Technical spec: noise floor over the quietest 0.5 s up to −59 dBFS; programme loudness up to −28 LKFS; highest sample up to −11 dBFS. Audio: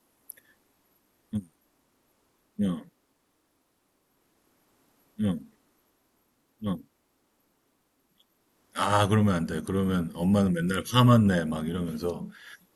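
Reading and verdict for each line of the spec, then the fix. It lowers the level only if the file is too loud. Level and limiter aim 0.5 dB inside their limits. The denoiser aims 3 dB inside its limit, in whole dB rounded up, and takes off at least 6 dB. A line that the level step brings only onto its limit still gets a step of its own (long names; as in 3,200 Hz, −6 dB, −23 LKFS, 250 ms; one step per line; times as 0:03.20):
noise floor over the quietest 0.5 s −72 dBFS: in spec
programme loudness −26.5 LKFS: out of spec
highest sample −8.5 dBFS: out of spec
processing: level −2 dB
brickwall limiter −11.5 dBFS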